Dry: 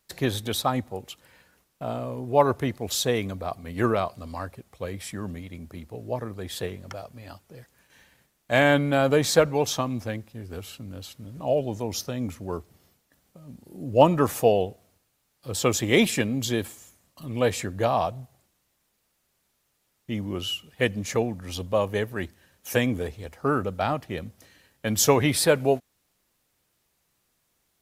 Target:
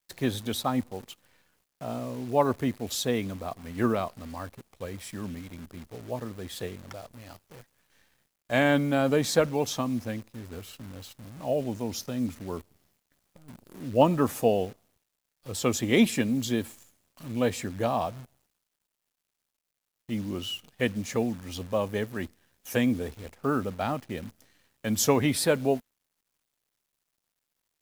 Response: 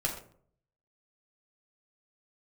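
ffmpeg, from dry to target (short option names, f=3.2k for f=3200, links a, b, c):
-af "adynamicequalizer=threshold=0.00891:dfrequency=240:dqfactor=2.5:tfrequency=240:tqfactor=2.5:attack=5:release=100:ratio=0.375:range=3.5:mode=boostabove:tftype=bell,acrusher=bits=8:dc=4:mix=0:aa=0.000001,volume=-4.5dB"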